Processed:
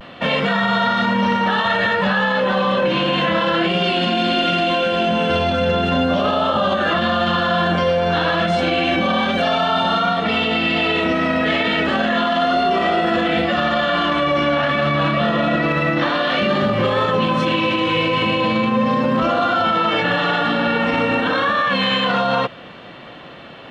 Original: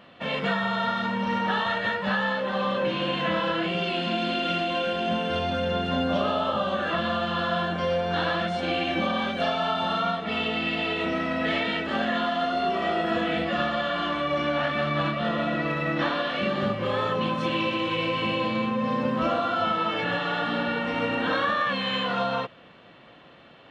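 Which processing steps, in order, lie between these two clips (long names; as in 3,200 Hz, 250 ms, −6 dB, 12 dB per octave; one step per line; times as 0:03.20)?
pitch vibrato 0.32 Hz 24 cents
boost into a limiter +21.5 dB
level −8.5 dB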